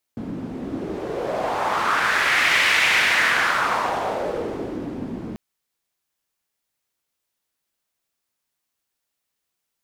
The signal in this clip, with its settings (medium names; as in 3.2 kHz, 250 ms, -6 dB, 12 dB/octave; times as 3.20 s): wind-like swept noise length 5.19 s, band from 230 Hz, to 2.2 kHz, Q 2.5, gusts 1, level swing 13 dB